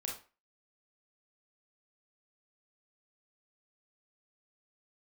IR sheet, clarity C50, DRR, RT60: 5.5 dB, -1.5 dB, 0.35 s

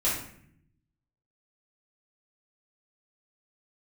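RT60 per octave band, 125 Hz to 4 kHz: 1.3 s, 1.1 s, 0.70 s, 0.55 s, 0.65 s, 0.45 s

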